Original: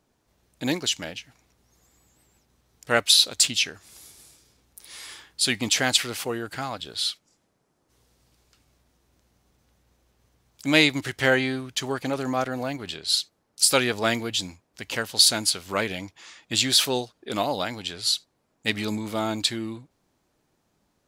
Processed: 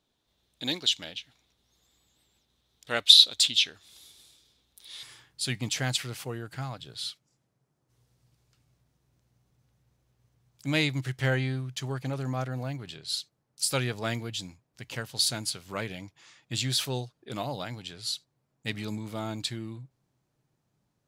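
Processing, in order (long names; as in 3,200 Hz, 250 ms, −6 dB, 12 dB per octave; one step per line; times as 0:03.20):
parametric band 3,600 Hz +15 dB 0.57 octaves, from 0:05.03 130 Hz
level −9 dB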